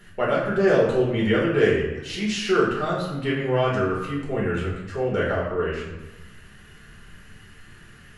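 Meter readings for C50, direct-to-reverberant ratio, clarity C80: 2.5 dB, -5.5 dB, 5.5 dB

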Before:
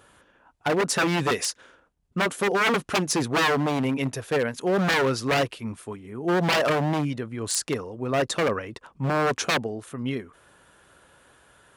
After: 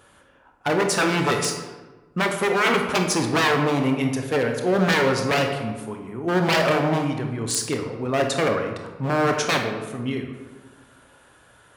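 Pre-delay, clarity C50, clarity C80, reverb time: 20 ms, 5.5 dB, 7.5 dB, 1.2 s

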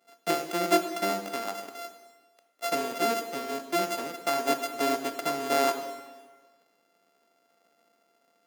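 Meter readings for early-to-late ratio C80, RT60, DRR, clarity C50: 10.0 dB, 1.4 s, 7.0 dB, 8.5 dB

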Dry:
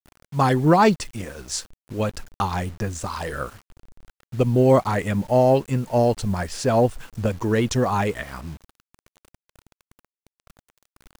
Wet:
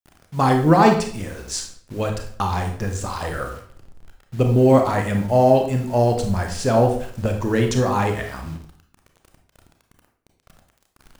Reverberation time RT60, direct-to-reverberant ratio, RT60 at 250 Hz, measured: 0.55 s, 3.5 dB, 0.70 s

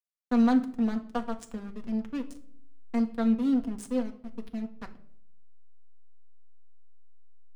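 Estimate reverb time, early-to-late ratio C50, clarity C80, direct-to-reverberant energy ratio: 0.65 s, 15.0 dB, 18.5 dB, 3.5 dB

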